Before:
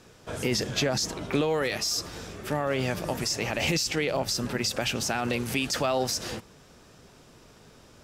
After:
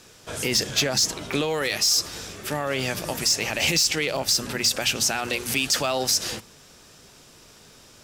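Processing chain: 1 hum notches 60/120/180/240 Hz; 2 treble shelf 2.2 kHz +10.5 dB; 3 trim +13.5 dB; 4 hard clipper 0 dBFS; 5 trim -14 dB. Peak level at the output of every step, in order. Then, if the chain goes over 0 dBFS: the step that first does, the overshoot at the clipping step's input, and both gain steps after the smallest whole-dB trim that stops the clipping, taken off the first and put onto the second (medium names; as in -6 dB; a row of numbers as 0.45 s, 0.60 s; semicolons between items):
-13.5 dBFS, -6.5 dBFS, +7.0 dBFS, 0.0 dBFS, -14.0 dBFS; step 3, 7.0 dB; step 3 +6.5 dB, step 5 -7 dB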